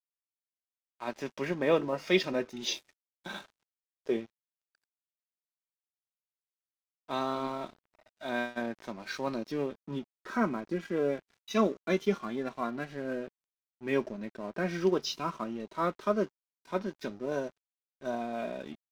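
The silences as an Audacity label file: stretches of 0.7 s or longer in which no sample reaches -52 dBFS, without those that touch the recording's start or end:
4.260000	7.090000	silence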